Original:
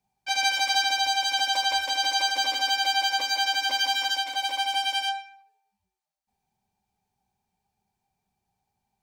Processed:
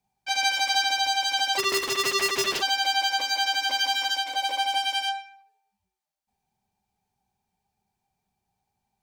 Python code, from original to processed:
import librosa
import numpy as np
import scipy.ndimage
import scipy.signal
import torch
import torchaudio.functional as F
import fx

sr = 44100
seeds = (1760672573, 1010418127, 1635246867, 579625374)

y = fx.cycle_switch(x, sr, every=2, mode='inverted', at=(1.57, 2.61), fade=0.02)
y = fx.peak_eq(y, sr, hz=480.0, db=8.0, octaves=0.84, at=(4.29, 4.78))